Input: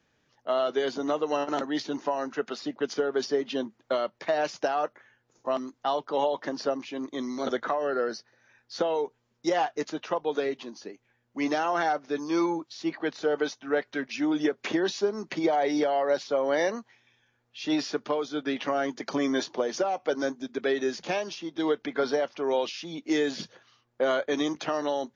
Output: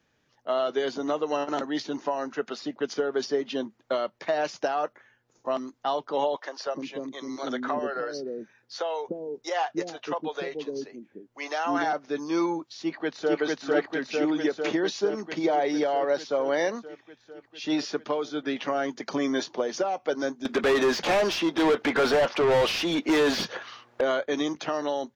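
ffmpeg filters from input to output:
-filter_complex "[0:a]asettb=1/sr,asplit=3[a][b][c];[a]atrim=end=6.364[d];[b]atrim=start=6.36:end=11.93,asetpts=PTS-STARTPTS,afade=t=in:d=0.004:c=qsin,afade=t=out:st=5.566:d=0.004:c=qsin,acrossover=split=450[e][f];[e]adelay=300[g];[g][f]amix=inputs=2:normalize=0,atrim=end_sample=245637[h];[c]atrim=start=11.926[i];[d][h]acrossfade=d=0.004:c1=hsin:c2=qsin[j];[j][i]acrossfade=d=0.004:c1=qsin:c2=hsin,asplit=2[k][l];[l]afade=t=in:st=12.81:d=0.01,afade=t=out:st=13.4:d=0.01,aecho=0:1:450|900|1350|1800|2250|2700|3150|3600|4050|4500|4950|5400:1|0.75|0.5625|0.421875|0.316406|0.237305|0.177979|0.133484|0.100113|0.0750847|0.0563135|0.0422351[m];[k][m]amix=inputs=2:normalize=0,asettb=1/sr,asplit=3[n][o][p];[n]atrim=end=20.454[q];[o]atrim=start=20.45:end=24.01,asetpts=PTS-STARTPTS,afade=t=in:d=0.004:c=qsin,afade=t=out:st=3.556:d=0.004:c=qsin,asplit=2[r][s];[s]highpass=f=720:p=1,volume=29dB,asoftclip=type=tanh:threshold=-14.5dB[t];[r][t]amix=inputs=2:normalize=0,lowpass=f=1.9k:p=1,volume=-6dB[u];[p]atrim=start=24.006[v];[q][u]acrossfade=d=0.004:c1=hsin:c2=qsin[w];[w][v]acrossfade=d=0.004:c1=qsin:c2=hsin"

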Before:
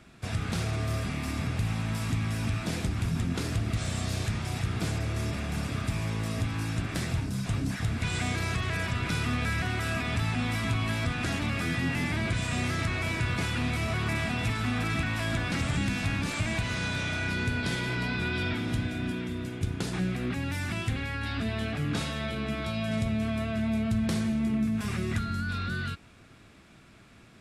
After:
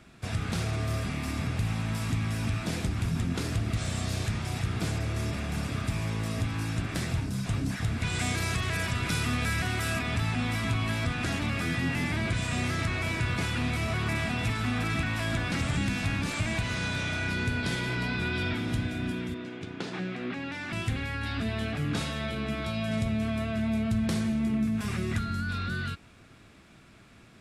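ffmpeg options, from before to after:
-filter_complex "[0:a]asettb=1/sr,asplit=3[a][b][c];[a]atrim=end=8.194[d];[b]atrim=start=8.19:end=9.99,asetpts=PTS-STARTPTS,afade=t=in:d=0.004:c=qsin,afade=t=out:st=1.796:d=0.004:c=qsin,highshelf=f=5.6k:g=8[e];[c]atrim=start=9.986[f];[d][e]acrossfade=d=0.004:c1=hsin:c2=qsin[g];[g][f]acrossfade=d=0.004:c1=qsin:c2=hsin,asettb=1/sr,asplit=3[h][i][j];[h]atrim=end=19.344[k];[i]atrim=start=19.34:end=20.73,asetpts=PTS-STARTPTS,afade=t=in:d=0.004:c=qsin,afade=t=out:st=1.386:d=0.004:c=qsin,highpass=230,lowpass=4.3k[l];[j]atrim=start=20.726[m];[k][l]acrossfade=d=0.004:c1=hsin:c2=qsin[n];[n][m]acrossfade=d=0.004:c1=qsin:c2=hsin"

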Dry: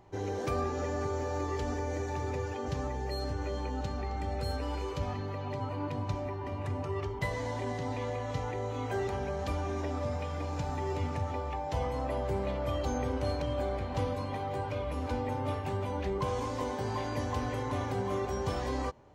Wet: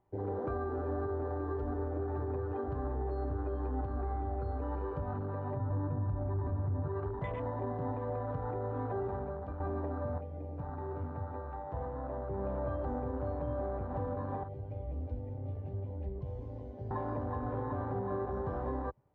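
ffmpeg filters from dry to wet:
-filter_complex "[0:a]asettb=1/sr,asplit=3[a][b][c];[a]atrim=end=0.484[d];[b]atrim=start=0.48:end=4.61,asetpts=PTS-STARTPTS,afade=t=in:d=0.004:c=qsin,afade=t=out:st=4.126:d=0.004:c=qsin,aecho=1:1:2.8:0.56,atrim=end_sample=182133[e];[c]atrim=start=4.606[f];[d][e]acrossfade=d=0.004:c1=hsin:c2=qsin[g];[g][f]acrossfade=d=0.004:c1=qsin:c2=hsin,asettb=1/sr,asplit=3[h][i][j];[h]atrim=end=5.564[k];[i]atrim=start=5.56:end=6.88,asetpts=PTS-STARTPTS,afade=t=in:d=0.004:c=qsin,afade=t=out:st=1.316:d=0.004:c=qsin,aemphasis=mode=reproduction:type=bsi[l];[j]atrim=start=6.876[m];[k][l]acrossfade=d=0.004:c1=hsin:c2=qsin[n];[n][m]acrossfade=d=0.004:c1=qsin:c2=hsin,asettb=1/sr,asplit=3[o][p][q];[o]atrim=end=14.434[r];[p]atrim=start=14.43:end=16.91,asetpts=PTS-STARTPTS,afade=t=in:d=0.004:c=qsin,afade=t=out:st=2.476:d=0.004:c=qsin,acrossover=split=120|3000[s][t][u];[t]acompressor=threshold=-42dB:ratio=10:attack=3.2:release=140:knee=2.83:detection=peak[v];[s][v][u]amix=inputs=3:normalize=0[w];[q]atrim=start=16.906[x];[r][w]acrossfade=d=0.004:c1=hsin:c2=qsin[y];[y][x]acrossfade=d=0.004:c1=qsin:c2=hsin,asplit=4[z][aa][ab][ac];[z]atrim=end=9.6,asetpts=PTS-STARTPTS,afade=t=out:st=8.89:d=0.71:silence=0.354813[ad];[aa]atrim=start=9.6:end=10.182,asetpts=PTS-STARTPTS,afade=t=in:d=0.004:c=hsin:silence=0.354813[ae];[ab]atrim=start=10.178:end=12.382,asetpts=PTS-STARTPTS,volume=-5.5dB[af];[ac]atrim=start=12.378[ag];[ad][ae]concat=n=2:v=0:a=1[ah];[ah][af]acrossfade=d=0.004:c1=hsin:c2=hsin[ai];[ai][ag]acrossfade=d=0.004:c1=hsin:c2=hsin,lowpass=1.9k,afwtdn=0.0112,alimiter=level_in=3dB:limit=-24dB:level=0:latency=1:release=148,volume=-3dB"

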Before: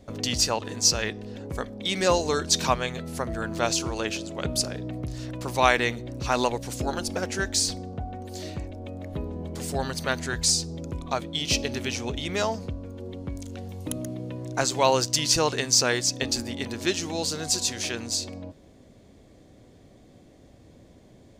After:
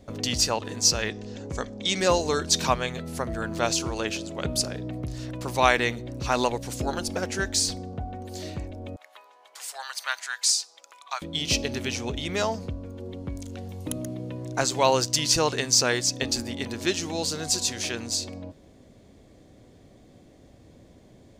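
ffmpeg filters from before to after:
-filter_complex "[0:a]asettb=1/sr,asplit=3[a][b][c];[a]atrim=end=1.104[d];[b]atrim=start=1.1:end=2,asetpts=PTS-STARTPTS,afade=t=in:d=0.004:c=qsin,afade=t=out:st=0.896:d=0.004:c=qsin,lowpass=f=6.8k:t=q:w=2.7[e];[c]atrim=start=1.996[f];[d][e]acrossfade=d=0.004:c1=hsin:c2=qsin[g];[g][f]acrossfade=d=0.004:c1=qsin:c2=hsin,asettb=1/sr,asplit=3[h][i][j];[h]atrim=end=8.964[k];[i]atrim=start=8.96:end=11.22,asetpts=PTS-STARTPTS,afade=t=in:d=0.004:c=qsin,afade=t=out:st=2.256:d=0.004:c=qsin,highpass=f=940:w=0.5412,highpass=f=940:w=1.3066[l];[j]atrim=start=11.216[m];[k][l]acrossfade=d=0.004:c1=hsin:c2=qsin[n];[n][m]acrossfade=d=0.004:c1=qsin:c2=hsin"

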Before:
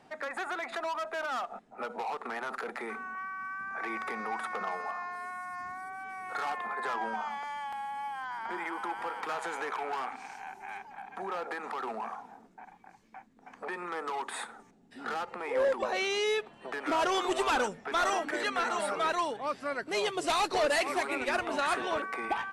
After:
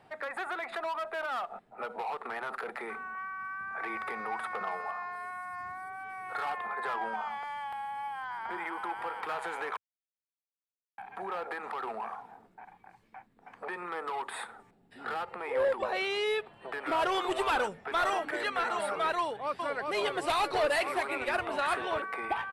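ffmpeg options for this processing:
-filter_complex "[0:a]asettb=1/sr,asplit=3[a][b][c];[a]atrim=end=13.824[d];[b]atrim=start=13.82:end=16.96,asetpts=PTS-STARTPTS,afade=t=in:d=0.004:c=qsin,afade=t=out:st=3.136:d=0.004:c=qsin,bandreject=f=6.2k:w=12[e];[c]atrim=start=16.956[f];[d][e]acrossfade=d=0.004:c1=hsin:c2=qsin[g];[g][f]acrossfade=d=0.004:c1=qsin:c2=hsin,asplit=2[h][i];[i]afade=t=in:st=19.2:d=0.01,afade=t=out:st=19.82:d=0.01,aecho=0:1:390|780|1170|1560|1950|2340|2730|3120|3510:0.668344|0.401006|0.240604|0.144362|0.0866174|0.0519704|0.0311823|0.0187094|0.0112256[j];[h][j]amix=inputs=2:normalize=0,asplit=3[k][l][m];[k]atrim=end=9.77,asetpts=PTS-STARTPTS,afade=t=out:st=9.766:d=0.004:c=hsin[n];[l]atrim=start=9.77:end=10.98,asetpts=PTS-STARTPTS,volume=0[o];[m]atrim=start=10.98,asetpts=PTS-STARTPTS,afade=t=in:d=0.004:c=hsin[p];[n][o][p]concat=n=3:v=0:a=1,equalizer=f=100:t=o:w=0.67:g=6,equalizer=f=250:t=o:w=0.67:g=-7,equalizer=f=6.3k:t=o:w=0.67:g=-11"

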